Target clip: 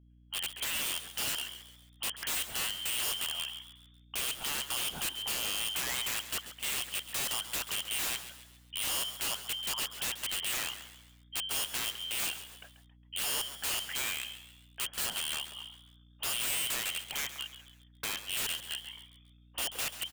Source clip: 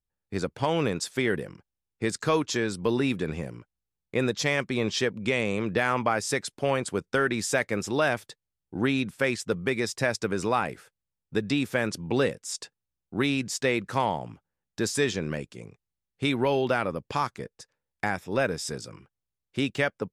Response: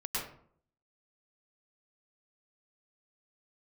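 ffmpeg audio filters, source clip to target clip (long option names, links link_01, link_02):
-filter_complex "[0:a]asplit=2[link_01][link_02];[link_02]asoftclip=type=hard:threshold=-24dB,volume=-8dB[link_03];[link_01][link_03]amix=inputs=2:normalize=0,lowpass=frequency=2800:width_type=q:width=0.5098,lowpass=frequency=2800:width_type=q:width=0.6013,lowpass=frequency=2800:width_type=q:width=0.9,lowpass=frequency=2800:width_type=q:width=2.563,afreqshift=-3300,aeval=exprs='(mod(11.9*val(0)+1,2)-1)/11.9':channel_layout=same,asplit=5[link_04][link_05][link_06][link_07][link_08];[link_05]adelay=136,afreqshift=110,volume=-12.5dB[link_09];[link_06]adelay=272,afreqshift=220,volume=-19.4dB[link_10];[link_07]adelay=408,afreqshift=330,volume=-26.4dB[link_11];[link_08]adelay=544,afreqshift=440,volume=-33.3dB[link_12];[link_04][link_09][link_10][link_11][link_12]amix=inputs=5:normalize=0,aeval=exprs='val(0)+0.00251*(sin(2*PI*60*n/s)+sin(2*PI*2*60*n/s)/2+sin(2*PI*3*60*n/s)/3+sin(2*PI*4*60*n/s)/4+sin(2*PI*5*60*n/s)/5)':channel_layout=same,volume=-6.5dB"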